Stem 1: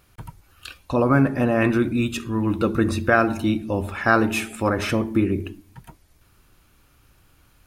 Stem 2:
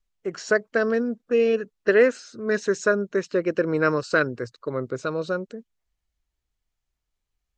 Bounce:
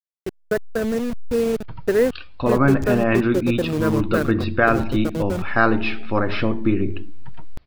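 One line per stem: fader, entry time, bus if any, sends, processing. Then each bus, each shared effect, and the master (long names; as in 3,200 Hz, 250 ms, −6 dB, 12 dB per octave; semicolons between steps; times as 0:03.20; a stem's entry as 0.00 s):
+0.5 dB, 1.50 s, no send, Butterworth low-pass 4,900 Hz 72 dB per octave
−6.0 dB, 0.00 s, no send, hold until the input has moved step −22.5 dBFS; low-shelf EQ 450 Hz +11.5 dB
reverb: not used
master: no processing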